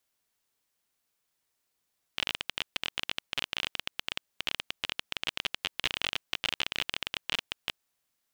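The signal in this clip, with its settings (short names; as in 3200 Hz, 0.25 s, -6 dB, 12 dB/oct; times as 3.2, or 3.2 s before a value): random clicks 24/s -12 dBFS 5.58 s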